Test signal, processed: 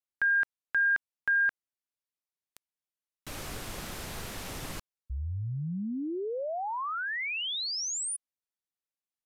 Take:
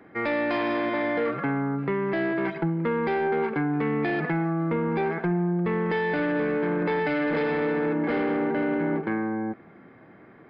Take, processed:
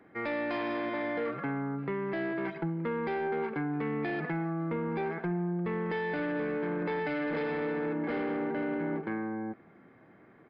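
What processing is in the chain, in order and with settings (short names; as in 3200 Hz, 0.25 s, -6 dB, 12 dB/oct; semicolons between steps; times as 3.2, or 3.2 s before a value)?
downsampling 32000 Hz; gain -7 dB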